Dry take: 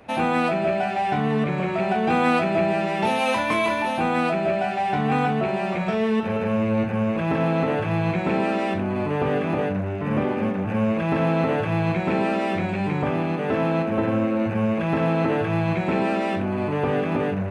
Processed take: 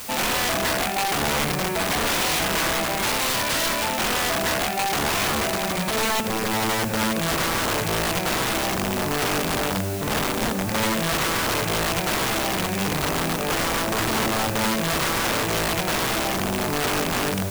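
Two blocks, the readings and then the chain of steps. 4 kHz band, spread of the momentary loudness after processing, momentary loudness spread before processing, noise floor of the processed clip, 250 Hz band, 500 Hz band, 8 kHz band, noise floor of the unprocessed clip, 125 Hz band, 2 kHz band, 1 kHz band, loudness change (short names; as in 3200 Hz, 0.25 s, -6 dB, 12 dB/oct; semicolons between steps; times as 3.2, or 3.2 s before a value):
+13.0 dB, 2 LU, 3 LU, -26 dBFS, -5.0 dB, -3.5 dB, n/a, -27 dBFS, -4.0 dB, +4.0 dB, 0.0 dB, +0.5 dB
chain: wrapped overs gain 18 dB; requantised 6-bit, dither triangular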